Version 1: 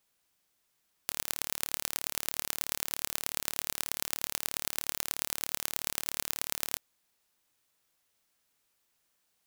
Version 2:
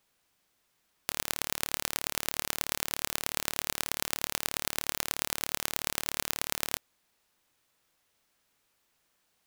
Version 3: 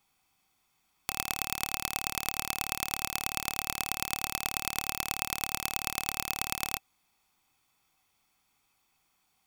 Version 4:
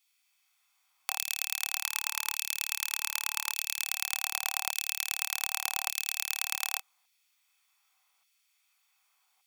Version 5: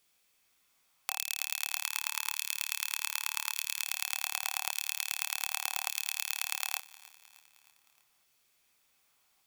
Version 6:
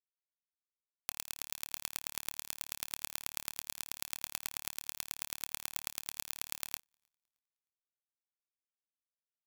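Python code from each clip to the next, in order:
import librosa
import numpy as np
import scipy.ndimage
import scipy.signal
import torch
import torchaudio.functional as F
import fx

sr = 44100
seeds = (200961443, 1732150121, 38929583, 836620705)

y1 = fx.high_shelf(x, sr, hz=4700.0, db=-6.0)
y1 = y1 * 10.0 ** (5.5 / 20.0)
y2 = y1 + 0.53 * np.pad(y1, (int(0.9 * sr / 1000.0), 0))[:len(y1)]
y2 = fx.small_body(y2, sr, hz=(770.0, 2600.0), ring_ms=45, db=11)
y2 = y2 * 10.0 ** (-1.0 / 20.0)
y3 = fx.doubler(y2, sr, ms=26.0, db=-5)
y3 = fx.spec_box(y3, sr, start_s=1.85, length_s=1.99, low_hz=420.0, high_hz=870.0, gain_db=-22)
y3 = fx.filter_lfo_highpass(y3, sr, shape='saw_down', hz=0.85, low_hz=760.0, high_hz=2700.0, q=0.88)
y4 = fx.quant_dither(y3, sr, seeds[0], bits=12, dither='triangular')
y4 = fx.echo_feedback(y4, sr, ms=310, feedback_pct=56, wet_db=-20.5)
y4 = y4 * 10.0 ** (-2.0 / 20.0)
y5 = fx.power_curve(y4, sr, exponent=2.0)
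y5 = y5 * 10.0 ** (-2.0 / 20.0)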